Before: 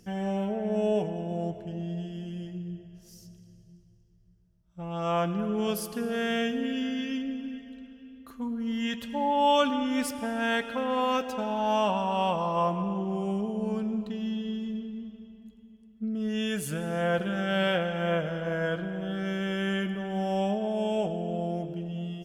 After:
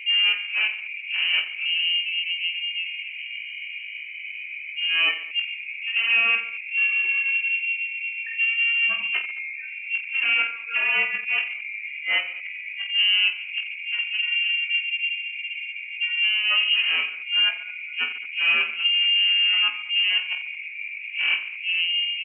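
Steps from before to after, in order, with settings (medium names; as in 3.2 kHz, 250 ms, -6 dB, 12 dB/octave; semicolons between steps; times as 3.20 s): spectral gate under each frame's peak -10 dB strong; tilt EQ -3 dB/octave; inverted gate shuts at -18 dBFS, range -32 dB; overdrive pedal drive 28 dB, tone 2.1 kHz, clips at -12.5 dBFS; band noise 460–840 Hz -35 dBFS; reverse bouncing-ball echo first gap 20 ms, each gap 1.4×, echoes 5; frequency inversion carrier 3 kHz; brick-wall FIR high-pass 190 Hz; trim -3 dB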